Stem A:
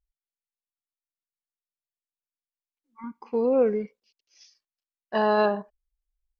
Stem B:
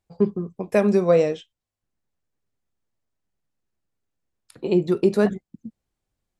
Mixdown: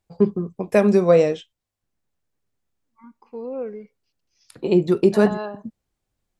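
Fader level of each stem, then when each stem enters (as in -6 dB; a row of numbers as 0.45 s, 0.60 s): -8.5 dB, +2.5 dB; 0.00 s, 0.00 s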